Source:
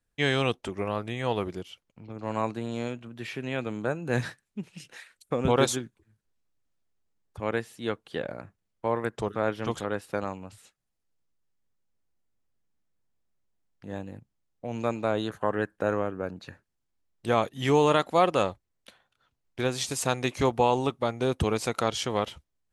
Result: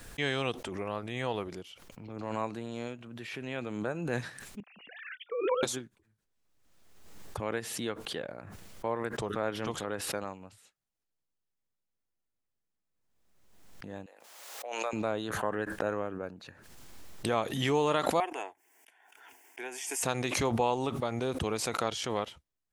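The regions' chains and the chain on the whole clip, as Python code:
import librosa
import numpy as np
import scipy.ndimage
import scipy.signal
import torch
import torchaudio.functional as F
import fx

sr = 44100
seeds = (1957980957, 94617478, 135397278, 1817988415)

y = fx.chain(x, sr, fx.sine_speech(),
    fx.level_steps(step_db=10), at=(4.6, 5.63))
y = fx.chain(y, sr, fx.highpass(hz=540.0, slope=24),
    fx.pre_swell(db_per_s=67.0), at=(14.06, 14.93))
y = fx.chain(y, sr, fx.highpass(hz=490.0, slope=12),
    fx.fixed_phaser(hz=820.0, stages=8), at=(18.2, 20.03))
y = fx.low_shelf(y, sr, hz=200.0, db=-4.5)
y = fx.pre_swell(y, sr, db_per_s=39.0)
y = y * 10.0 ** (-5.5 / 20.0)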